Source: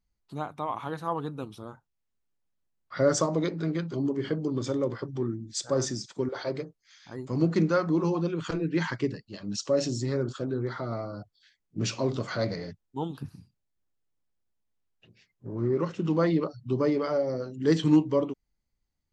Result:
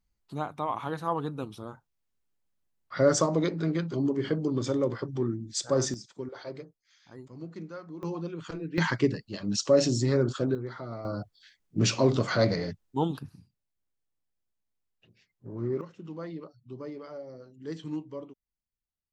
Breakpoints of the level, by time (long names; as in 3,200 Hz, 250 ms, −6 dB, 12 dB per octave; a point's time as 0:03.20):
+1 dB
from 0:05.94 −8 dB
from 0:07.28 −17 dB
from 0:08.03 −7 dB
from 0:08.78 +4 dB
from 0:10.55 −5.5 dB
from 0:11.05 +5 dB
from 0:13.19 −4 dB
from 0:15.81 −14.5 dB